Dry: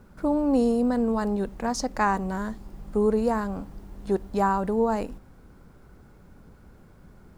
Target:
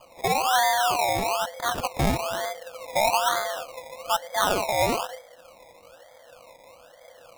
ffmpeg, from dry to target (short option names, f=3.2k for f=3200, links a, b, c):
-af "afreqshift=480,acrusher=samples=23:mix=1:aa=0.000001:lfo=1:lforange=13.8:lforate=1.1"